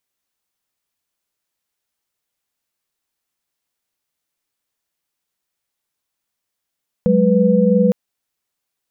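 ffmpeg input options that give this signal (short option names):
-f lavfi -i "aevalsrc='0.178*(sin(2*PI*185*t)+sin(2*PI*207.65*t)+sin(2*PI*493.88*t))':d=0.86:s=44100"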